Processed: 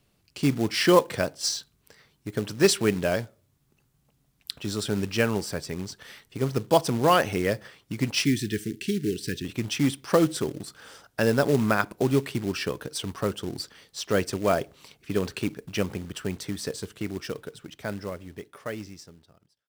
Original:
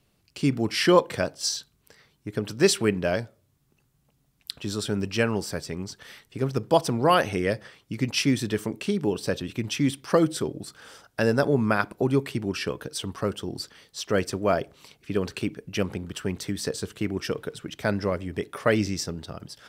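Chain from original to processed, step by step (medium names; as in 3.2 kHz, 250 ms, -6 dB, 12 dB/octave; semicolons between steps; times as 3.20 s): fade out at the end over 4.09 s; short-mantissa float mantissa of 2-bit; 8.25–9.45 s: elliptic band-stop 390–1700 Hz, stop band 50 dB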